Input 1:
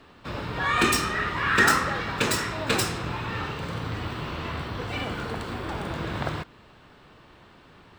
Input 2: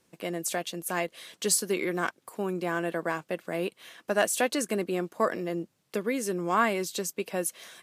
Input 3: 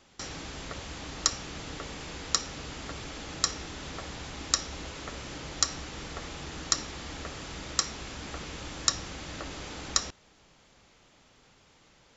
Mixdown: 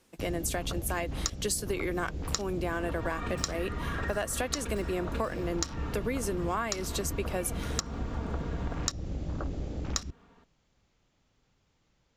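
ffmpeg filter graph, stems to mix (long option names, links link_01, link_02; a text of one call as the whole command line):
ffmpeg -i stem1.wav -i stem2.wav -i stem3.wav -filter_complex "[0:a]highshelf=frequency=2100:gain=-11.5,aecho=1:1:4.3:0.65,acompressor=threshold=-27dB:ratio=6,adelay=2450,volume=-7.5dB[link_01];[1:a]highpass=frequency=160:width=0.5412,highpass=frequency=160:width=1.3066,volume=1.5dB[link_02];[2:a]afwtdn=0.0126,lowshelf=frequency=210:gain=11,volume=1.5dB[link_03];[link_01][link_02][link_03]amix=inputs=3:normalize=0,acompressor=threshold=-27dB:ratio=10" out.wav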